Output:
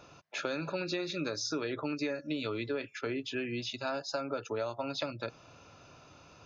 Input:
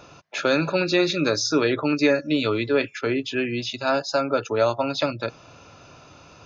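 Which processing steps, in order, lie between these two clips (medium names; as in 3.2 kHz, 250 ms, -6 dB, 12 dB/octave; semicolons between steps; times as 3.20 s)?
compression, threshold -23 dBFS, peak gain reduction 8.5 dB; trim -8 dB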